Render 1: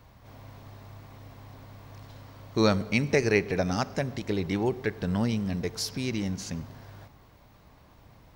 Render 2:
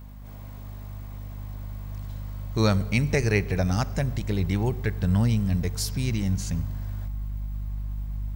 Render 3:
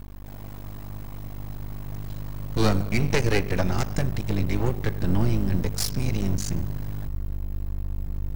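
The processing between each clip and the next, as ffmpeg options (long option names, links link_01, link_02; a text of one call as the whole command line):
ffmpeg -i in.wav -af "aexciter=amount=2.6:drive=4.1:freq=7200,aeval=exprs='val(0)+0.00794*(sin(2*PI*50*n/s)+sin(2*PI*2*50*n/s)/2+sin(2*PI*3*50*n/s)/3+sin(2*PI*4*50*n/s)/4+sin(2*PI*5*50*n/s)/5)':channel_layout=same,asubboost=boost=5:cutoff=140" out.wav
ffmpeg -i in.wav -af "aeval=exprs='max(val(0),0)':channel_layout=same,volume=6dB" out.wav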